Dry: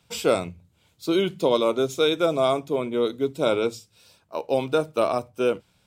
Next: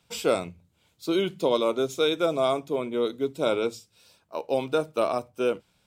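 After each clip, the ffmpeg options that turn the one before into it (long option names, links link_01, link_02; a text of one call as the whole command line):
ffmpeg -i in.wav -af "equalizer=frequency=100:width=1.2:gain=-4,volume=-2.5dB" out.wav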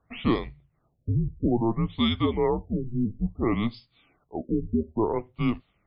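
ffmpeg -i in.wav -af "afreqshift=-230,afftfilt=real='re*lt(b*sr/1024,440*pow(5200/440,0.5+0.5*sin(2*PI*0.59*pts/sr)))':imag='im*lt(b*sr/1024,440*pow(5200/440,0.5+0.5*sin(2*PI*0.59*pts/sr)))':win_size=1024:overlap=0.75" out.wav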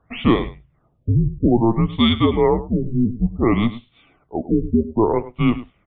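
ffmpeg -i in.wav -af "aecho=1:1:103:0.168,aresample=8000,aresample=44100,volume=8dB" out.wav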